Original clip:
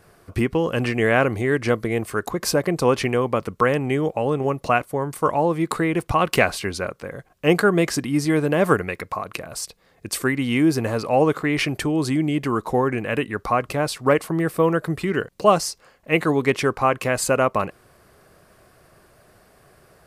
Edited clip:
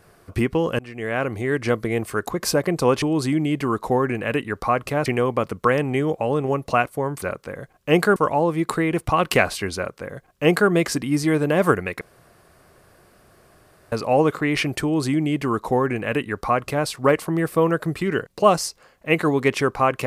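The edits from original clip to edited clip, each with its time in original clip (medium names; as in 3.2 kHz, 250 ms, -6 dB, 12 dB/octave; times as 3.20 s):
0.79–2.06 s: fade in equal-power, from -23 dB
6.78–7.72 s: copy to 5.18 s
9.03–10.94 s: room tone
11.85–13.89 s: copy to 3.02 s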